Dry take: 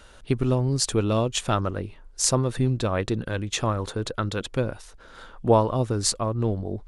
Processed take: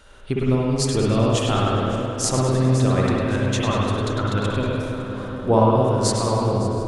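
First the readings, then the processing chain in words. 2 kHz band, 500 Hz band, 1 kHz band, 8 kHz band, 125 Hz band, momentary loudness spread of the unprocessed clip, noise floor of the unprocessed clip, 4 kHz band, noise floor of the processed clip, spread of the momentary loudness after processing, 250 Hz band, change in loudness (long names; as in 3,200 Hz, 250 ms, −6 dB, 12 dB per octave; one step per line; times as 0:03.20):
+5.0 dB, +4.5 dB, +5.5 dB, −0.5 dB, +5.0 dB, 8 LU, −49 dBFS, +2.0 dB, −31 dBFS, 7 LU, +6.0 dB, +4.0 dB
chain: feedback delay that plays each chunk backwards 280 ms, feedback 49%, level −12 dB
echo with a time of its own for lows and highs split 1,300 Hz, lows 753 ms, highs 102 ms, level −8.5 dB
spring reverb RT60 1.9 s, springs 54/59 ms, chirp 60 ms, DRR −4 dB
level −1.5 dB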